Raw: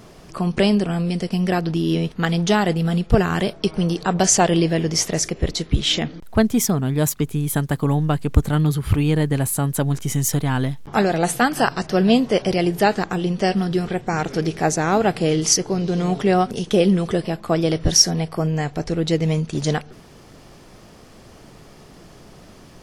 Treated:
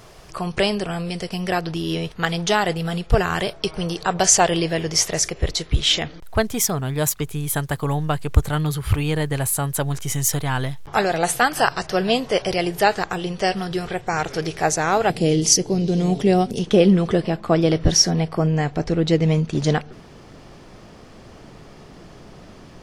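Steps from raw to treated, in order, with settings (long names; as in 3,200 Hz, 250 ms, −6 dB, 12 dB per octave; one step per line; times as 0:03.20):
parametric band 230 Hz −11.5 dB 1.3 octaves, from 0:15.10 1,300 Hz, from 0:16.59 14,000 Hz
level +2 dB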